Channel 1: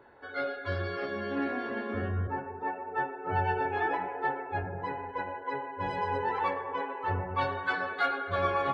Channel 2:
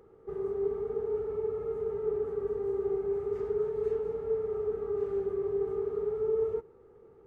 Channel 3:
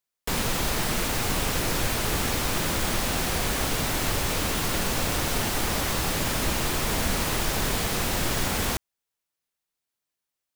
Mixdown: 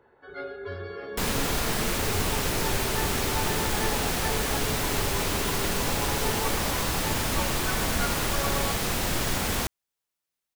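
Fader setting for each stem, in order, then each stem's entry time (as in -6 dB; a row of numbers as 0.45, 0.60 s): -5.0, -8.5, -1.0 dB; 0.00, 0.00, 0.90 s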